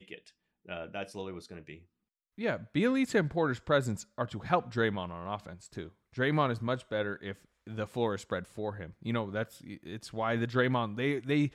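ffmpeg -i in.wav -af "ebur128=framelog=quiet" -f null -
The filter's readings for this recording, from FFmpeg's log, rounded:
Integrated loudness:
  I:         -32.7 LUFS
  Threshold: -43.6 LUFS
Loudness range:
  LRA:         4.9 LU
  Threshold: -53.4 LUFS
  LRA low:   -36.2 LUFS
  LRA high:  -31.2 LUFS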